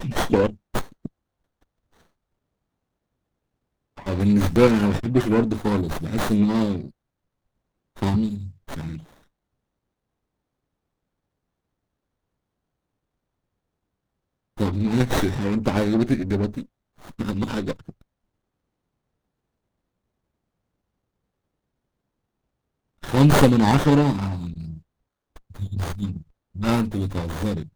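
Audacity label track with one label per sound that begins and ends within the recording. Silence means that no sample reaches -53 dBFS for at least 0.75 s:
3.970000	6.910000	sound
7.960000	9.240000	sound
14.570000	18.020000	sound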